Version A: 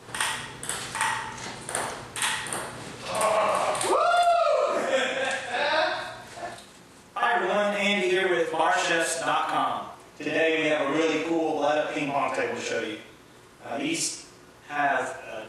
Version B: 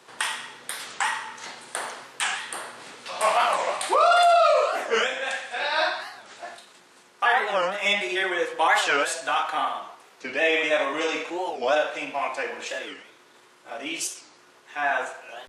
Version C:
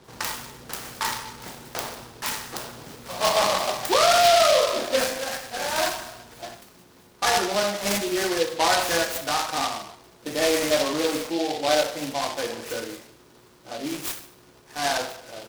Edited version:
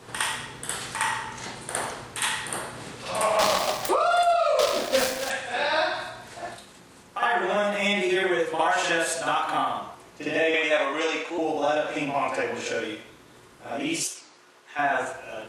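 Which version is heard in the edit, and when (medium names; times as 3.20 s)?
A
3.39–3.89 s: from C
4.59–5.30 s: from C
10.54–11.38 s: from B
14.03–14.79 s: from B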